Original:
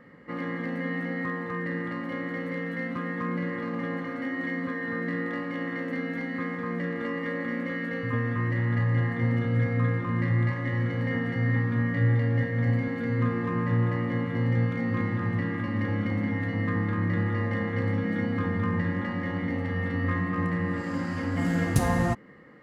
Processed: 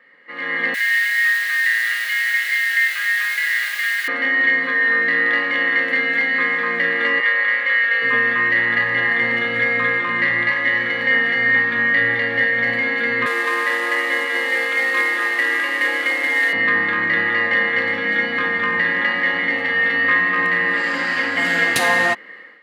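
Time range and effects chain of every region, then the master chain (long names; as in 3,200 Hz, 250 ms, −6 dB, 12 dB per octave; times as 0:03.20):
0:00.74–0:04.08: elliptic band-pass filter 1,500–4,700 Hz + bit-depth reduction 8 bits, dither triangular
0:07.20–0:08.02: high-pass filter 700 Hz + high-frequency loss of the air 69 metres
0:13.26–0:16.53: variable-slope delta modulation 64 kbit/s + Butterworth high-pass 290 Hz 48 dB per octave
whole clip: high-pass filter 510 Hz 12 dB per octave; flat-topped bell 2,700 Hz +10 dB; automatic gain control gain up to 15 dB; level −3 dB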